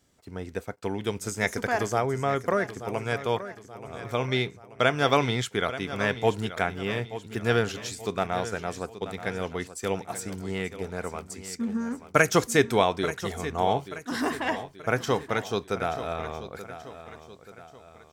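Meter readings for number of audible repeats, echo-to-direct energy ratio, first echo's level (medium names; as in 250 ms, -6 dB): 3, -12.0 dB, -13.0 dB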